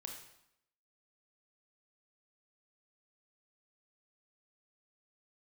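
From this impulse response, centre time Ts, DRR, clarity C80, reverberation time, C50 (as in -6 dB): 33 ms, 1.5 dB, 8.0 dB, 0.80 s, 4.5 dB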